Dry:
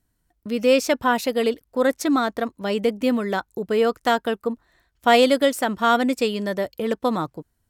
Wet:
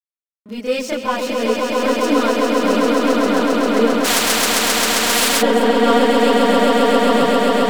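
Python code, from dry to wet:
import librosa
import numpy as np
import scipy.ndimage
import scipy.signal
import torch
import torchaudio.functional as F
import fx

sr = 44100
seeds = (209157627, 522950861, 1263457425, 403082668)

p1 = scipy.ndimage.median_filter(x, 3, mode='constant')
p2 = scipy.signal.sosfilt(scipy.signal.butter(2, 120.0, 'highpass', fs=sr, output='sos'), p1)
p3 = np.clip(p2, -10.0 ** (-19.0 / 20.0), 10.0 ** (-19.0 / 20.0))
p4 = p2 + (p3 * librosa.db_to_amplitude(-4.0))
p5 = fx.chorus_voices(p4, sr, voices=6, hz=0.48, base_ms=29, depth_ms=2.7, mix_pct=65)
p6 = np.sign(p5) * np.maximum(np.abs(p5) - 10.0 ** (-48.5 / 20.0), 0.0)
p7 = p6 + fx.echo_swell(p6, sr, ms=133, loudest=8, wet_db=-4, dry=0)
p8 = fx.spectral_comp(p7, sr, ratio=4.0, at=(4.04, 5.41), fade=0.02)
y = p8 * librosa.db_to_amplitude(-1.5)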